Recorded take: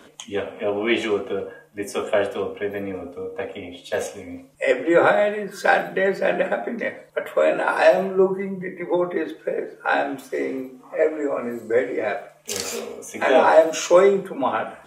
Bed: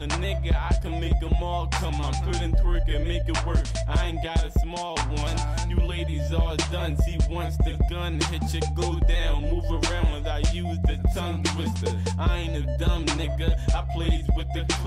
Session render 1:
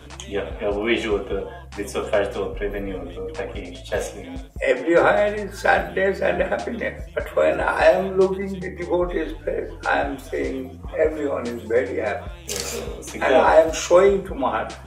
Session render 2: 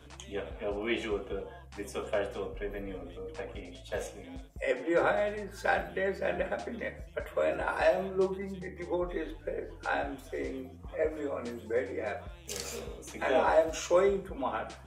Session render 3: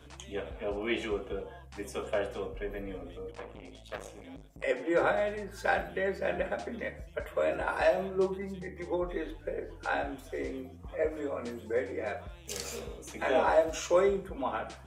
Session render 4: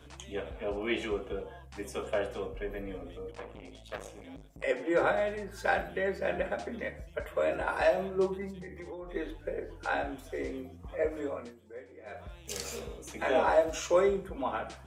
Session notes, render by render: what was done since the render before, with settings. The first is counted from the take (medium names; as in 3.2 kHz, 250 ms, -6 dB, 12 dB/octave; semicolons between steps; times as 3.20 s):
add bed -13 dB
trim -11 dB
3.31–4.64 s: transformer saturation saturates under 1.4 kHz
8.50–9.15 s: compression, threshold -39 dBFS; 11.29–12.30 s: dip -15 dB, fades 0.26 s